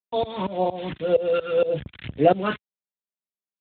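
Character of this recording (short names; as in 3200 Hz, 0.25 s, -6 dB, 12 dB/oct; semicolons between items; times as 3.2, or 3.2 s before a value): a quantiser's noise floor 6-bit, dither none; phasing stages 2, 1.9 Hz, lowest notch 650–1300 Hz; tremolo saw up 4.3 Hz, depth 95%; AMR-NB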